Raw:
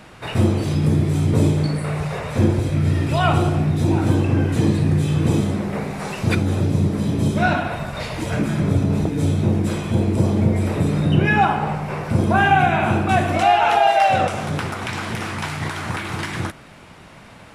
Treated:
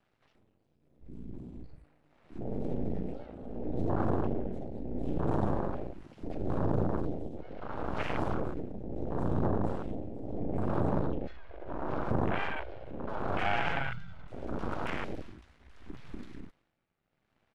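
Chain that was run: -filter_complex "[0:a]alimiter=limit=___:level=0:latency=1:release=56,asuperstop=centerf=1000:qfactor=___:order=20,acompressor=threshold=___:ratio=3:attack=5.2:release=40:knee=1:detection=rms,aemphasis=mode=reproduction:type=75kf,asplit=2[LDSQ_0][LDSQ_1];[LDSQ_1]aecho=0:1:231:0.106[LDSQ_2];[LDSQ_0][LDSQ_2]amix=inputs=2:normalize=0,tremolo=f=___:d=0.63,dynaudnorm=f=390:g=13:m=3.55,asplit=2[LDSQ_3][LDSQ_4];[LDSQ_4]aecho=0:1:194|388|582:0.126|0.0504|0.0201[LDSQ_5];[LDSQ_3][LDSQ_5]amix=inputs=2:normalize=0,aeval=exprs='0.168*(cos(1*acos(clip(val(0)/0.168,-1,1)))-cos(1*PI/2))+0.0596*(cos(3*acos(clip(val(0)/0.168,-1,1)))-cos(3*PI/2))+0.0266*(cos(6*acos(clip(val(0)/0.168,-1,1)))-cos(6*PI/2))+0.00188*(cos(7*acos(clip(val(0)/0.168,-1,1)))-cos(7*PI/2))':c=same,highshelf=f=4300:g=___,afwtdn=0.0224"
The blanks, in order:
0.188, 4.9, 0.0126, 0.74, 3.5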